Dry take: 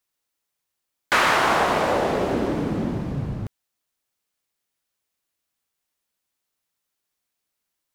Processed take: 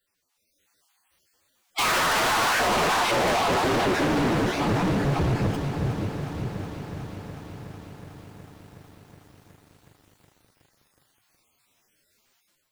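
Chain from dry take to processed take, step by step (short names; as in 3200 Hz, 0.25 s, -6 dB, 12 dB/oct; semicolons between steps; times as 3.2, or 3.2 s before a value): random spectral dropouts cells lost 34%; time stretch by phase-locked vocoder 1.6×; flange 1.3 Hz, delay 7.5 ms, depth 6.7 ms, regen -28%; in parallel at -2 dB: limiter -40 dBFS, peak gain reduction 27.5 dB; on the sum: high shelf 9400 Hz -6 dB; on a send: darkening echo 0.572 s, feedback 51%, low-pass 1000 Hz, level -13 dB; on the sum: AGC gain up to 10 dB; hard clip -28.5 dBFS, distortion -3 dB; lo-fi delay 0.368 s, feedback 80%, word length 10-bit, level -12 dB; gain +6.5 dB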